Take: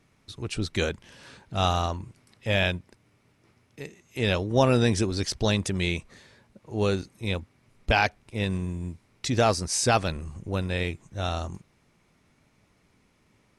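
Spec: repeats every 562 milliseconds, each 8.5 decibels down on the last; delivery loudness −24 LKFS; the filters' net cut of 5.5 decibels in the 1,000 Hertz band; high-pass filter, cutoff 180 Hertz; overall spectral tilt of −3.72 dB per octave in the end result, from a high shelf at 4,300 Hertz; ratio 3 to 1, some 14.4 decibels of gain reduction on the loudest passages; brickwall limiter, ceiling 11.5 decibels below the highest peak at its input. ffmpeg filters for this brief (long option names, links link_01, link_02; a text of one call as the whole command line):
ffmpeg -i in.wav -af "highpass=180,equalizer=frequency=1000:width_type=o:gain=-8.5,highshelf=frequency=4300:gain=4.5,acompressor=threshold=-39dB:ratio=3,alimiter=level_in=8dB:limit=-24dB:level=0:latency=1,volume=-8dB,aecho=1:1:562|1124|1686|2248:0.376|0.143|0.0543|0.0206,volume=21dB" out.wav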